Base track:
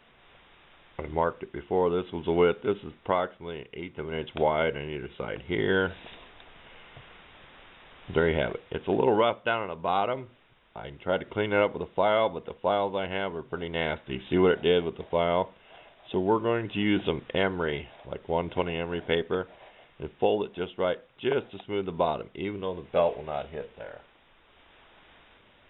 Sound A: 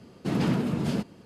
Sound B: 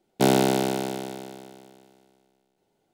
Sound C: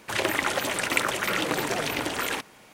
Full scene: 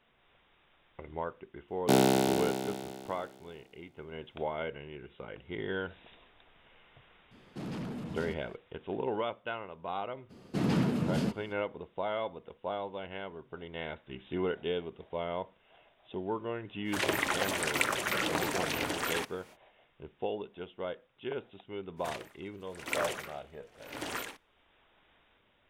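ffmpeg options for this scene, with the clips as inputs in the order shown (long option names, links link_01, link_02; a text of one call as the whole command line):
ffmpeg -i bed.wav -i cue0.wav -i cue1.wav -i cue2.wav -filter_complex "[1:a]asplit=2[link_01][link_02];[3:a]asplit=2[link_03][link_04];[0:a]volume=-10.5dB[link_05];[link_01]asoftclip=type=tanh:threshold=-25.5dB[link_06];[link_04]aeval=exprs='val(0)*pow(10,-35*(0.5-0.5*cos(2*PI*0.93*n/s))/20)':channel_layout=same[link_07];[2:a]atrim=end=2.93,asetpts=PTS-STARTPTS,volume=-4.5dB,afade=type=in:duration=0.004:curve=hsin,afade=type=out:start_time=2.926:duration=0.004:curve=hsin,adelay=1680[link_08];[link_06]atrim=end=1.25,asetpts=PTS-STARTPTS,volume=-9dB,afade=type=in:duration=0.004:curve=hsin,afade=type=out:start_time=1.246:duration=0.004:curve=hsin,adelay=7310[link_09];[link_02]atrim=end=1.25,asetpts=PTS-STARTPTS,volume=-3dB,afade=type=in:duration=0.02,afade=type=out:start_time=1.23:duration=0.02,adelay=10290[link_10];[link_03]atrim=end=2.73,asetpts=PTS-STARTPTS,volume=-5dB,afade=type=in:duration=0.05,afade=type=out:start_time=2.68:duration=0.05,adelay=742644S[link_11];[link_07]atrim=end=2.73,asetpts=PTS-STARTPTS,volume=-7dB,afade=type=in:duration=0.05,afade=type=out:start_time=2.68:duration=0.05,adelay=968436S[link_12];[link_05][link_08][link_09][link_10][link_11][link_12]amix=inputs=6:normalize=0" out.wav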